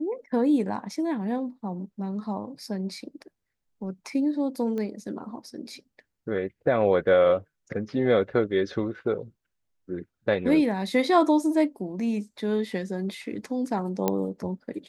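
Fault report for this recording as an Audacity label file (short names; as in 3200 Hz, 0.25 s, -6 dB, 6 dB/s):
4.780000	4.780000	pop -22 dBFS
14.080000	14.080000	pop -10 dBFS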